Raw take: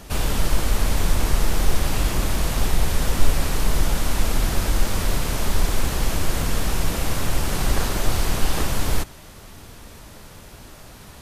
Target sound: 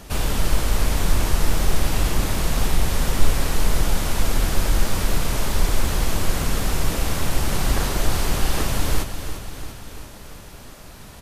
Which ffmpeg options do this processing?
ffmpeg -i in.wav -af "aecho=1:1:343|686|1029|1372|1715|2058|2401:0.316|0.19|0.114|0.0683|0.041|0.0246|0.0148" out.wav

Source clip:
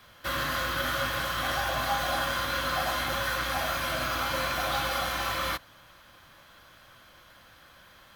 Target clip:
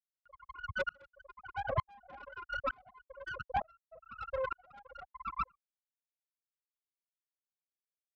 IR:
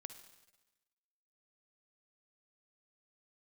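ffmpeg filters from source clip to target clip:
-filter_complex "[0:a]asuperstop=centerf=4900:order=4:qfactor=1.4,afftfilt=real='re*gte(hypot(re,im),0.178)':imag='im*gte(hypot(re,im),0.178)':win_size=1024:overlap=0.75,acrossover=split=270[link_01][link_02];[link_02]acompressor=mode=upward:threshold=-53dB:ratio=2.5[link_03];[link_01][link_03]amix=inputs=2:normalize=0,adynamicequalizer=threshold=0.00398:dfrequency=940:dqfactor=1.2:tfrequency=940:tqfactor=1.2:attack=5:release=100:ratio=0.375:range=2.5:mode=cutabove:tftype=bell,aeval=exprs='(tanh(79.4*val(0)+0.55)-tanh(0.55))/79.4':channel_layout=same,highpass=58,bass=frequency=250:gain=10,treble=frequency=4000:gain=-6,aeval=exprs='val(0)*pow(10,-34*if(lt(mod(-1.1*n/s,1),2*abs(-1.1)/1000),1-mod(-1.1*n/s,1)/(2*abs(-1.1)/1000),(mod(-1.1*n/s,1)-2*abs(-1.1)/1000)/(1-2*abs(-1.1)/1000))/20)':channel_layout=same,volume=13.5dB"

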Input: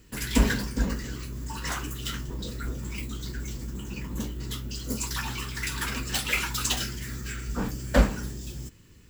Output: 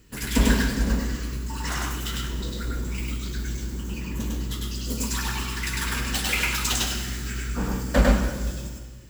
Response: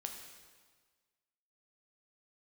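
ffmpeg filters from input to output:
-filter_complex "[0:a]asplit=2[link_01][link_02];[1:a]atrim=start_sample=2205,adelay=101[link_03];[link_02][link_03]afir=irnorm=-1:irlink=0,volume=2.5dB[link_04];[link_01][link_04]amix=inputs=2:normalize=0"

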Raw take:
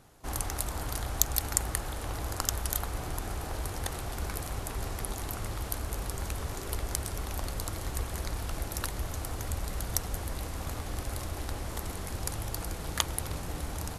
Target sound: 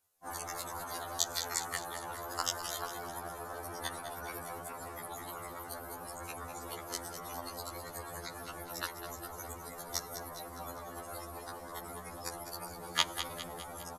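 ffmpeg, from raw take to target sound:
ffmpeg -i in.wav -filter_complex "[0:a]afftdn=noise_reduction=24:noise_floor=-42,aemphasis=mode=production:type=bsi,acrossover=split=4900[link_01][link_02];[link_02]acompressor=threshold=-46dB:ratio=4:attack=1:release=60[link_03];[link_01][link_03]amix=inputs=2:normalize=0,lowshelf=frequency=310:gain=-8.5,asplit=2[link_04][link_05];[link_05]aecho=0:1:203|406|609|812|1015|1218:0.316|0.168|0.0888|0.0471|0.025|0.0132[link_06];[link_04][link_06]amix=inputs=2:normalize=0,afftfilt=real='re*2*eq(mod(b,4),0)':imag='im*2*eq(mod(b,4),0)':win_size=2048:overlap=0.75,volume=4dB" out.wav

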